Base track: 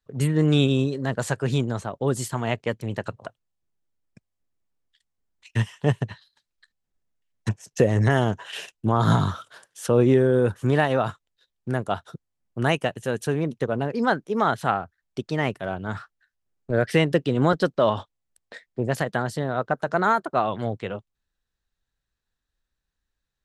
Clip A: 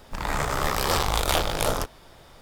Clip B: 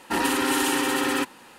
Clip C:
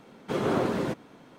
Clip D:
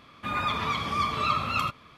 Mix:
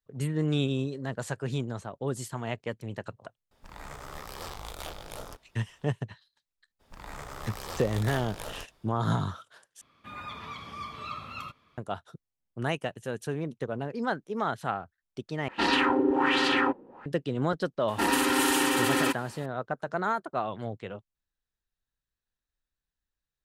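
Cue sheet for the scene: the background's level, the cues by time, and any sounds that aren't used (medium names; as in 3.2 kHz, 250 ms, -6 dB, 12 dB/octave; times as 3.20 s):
base track -8 dB
3.51 s: add A -17 dB
6.79 s: add A -15.5 dB, fades 0.02 s
9.81 s: replace with D -12.5 dB
15.48 s: replace with B -2 dB + LFO low-pass sine 1.3 Hz 420–4600 Hz
17.88 s: add B -1.5 dB
not used: C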